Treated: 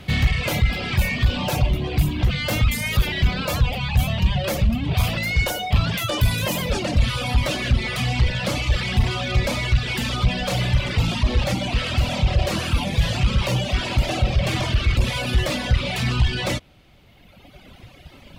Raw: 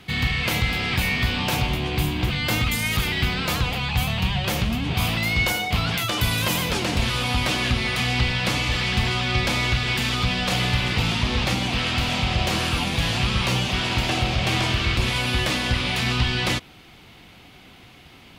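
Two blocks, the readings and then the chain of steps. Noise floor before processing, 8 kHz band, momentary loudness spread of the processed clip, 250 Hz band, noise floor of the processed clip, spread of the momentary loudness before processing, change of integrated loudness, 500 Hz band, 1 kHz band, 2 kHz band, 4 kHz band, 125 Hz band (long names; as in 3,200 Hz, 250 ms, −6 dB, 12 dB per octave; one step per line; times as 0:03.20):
−48 dBFS, −2.0 dB, 2 LU, 0.0 dB, −49 dBFS, 2 LU, +0.5 dB, +2.5 dB, −2.0 dB, −3.0 dB, −3.0 dB, +3.5 dB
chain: parametric band 580 Hz +12 dB 0.25 octaves
soft clipping −19.5 dBFS, distortion −13 dB
reverb reduction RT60 2 s
low-shelf EQ 150 Hz +11.5 dB
level +2.5 dB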